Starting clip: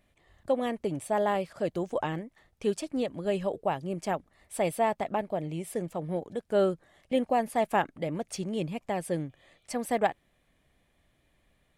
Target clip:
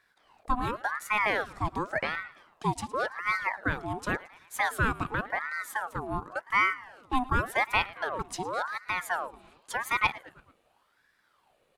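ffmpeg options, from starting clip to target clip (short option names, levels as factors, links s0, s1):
-af "aecho=1:1:111|222|333|444:0.1|0.054|0.0292|0.0157,aeval=exprs='val(0)*sin(2*PI*1100*n/s+1100*0.55/0.9*sin(2*PI*0.9*n/s))':c=same,volume=1.33"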